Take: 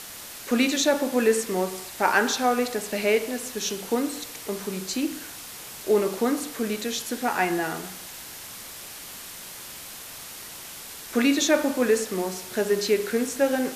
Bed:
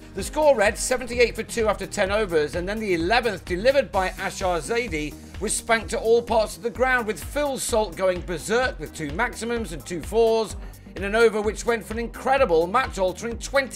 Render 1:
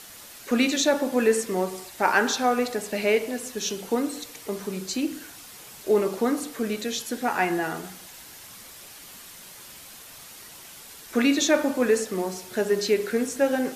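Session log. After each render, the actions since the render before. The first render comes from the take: noise reduction 6 dB, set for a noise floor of -41 dBFS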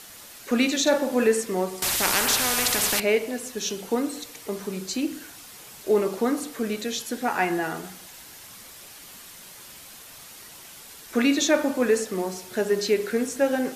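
0.82–1.27 s: doubling 45 ms -7.5 dB; 1.82–3.00 s: spectrum-flattening compressor 4:1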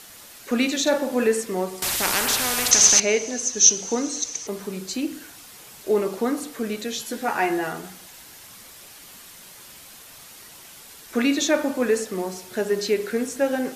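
2.71–4.47 s: resonant low-pass 6.2 kHz, resonance Q 14; 6.98–7.72 s: doubling 14 ms -5 dB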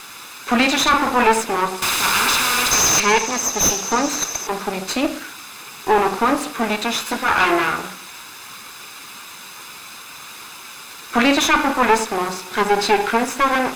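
comb filter that takes the minimum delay 0.79 ms; overdrive pedal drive 22 dB, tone 2.5 kHz, clips at -2 dBFS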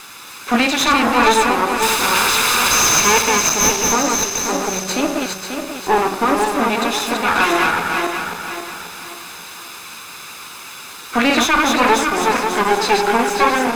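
backward echo that repeats 269 ms, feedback 62%, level -3 dB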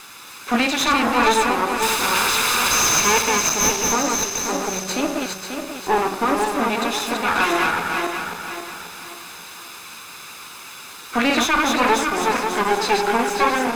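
trim -3.5 dB

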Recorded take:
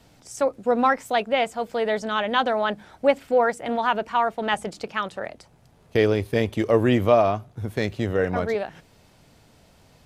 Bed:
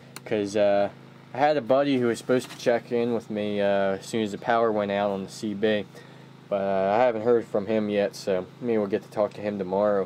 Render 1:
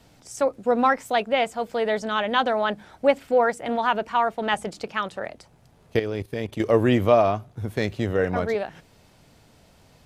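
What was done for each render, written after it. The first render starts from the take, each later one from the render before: 5.99–6.60 s: level held to a coarse grid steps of 14 dB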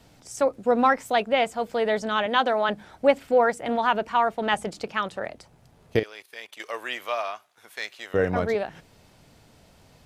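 2.26–2.69 s: high-pass 220 Hz; 6.03–8.14 s: high-pass 1.3 kHz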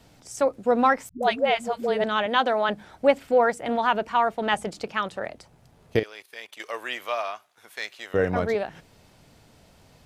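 1.09–2.04 s: phase dispersion highs, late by 135 ms, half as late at 330 Hz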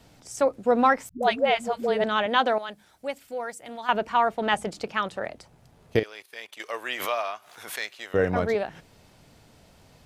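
2.58–3.89 s: pre-emphasis filter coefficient 0.8; 6.86–7.92 s: swell ahead of each attack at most 70 dB/s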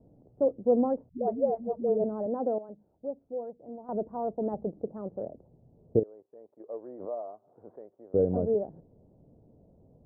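inverse Chebyshev low-pass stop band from 2.5 kHz, stop band 70 dB; bass shelf 94 Hz -6.5 dB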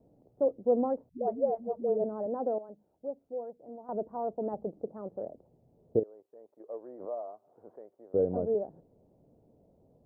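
bass shelf 250 Hz -9 dB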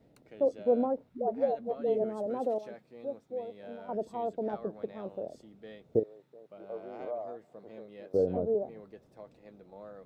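add bed -25 dB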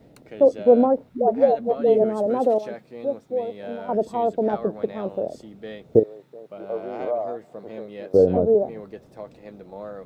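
trim +11.5 dB

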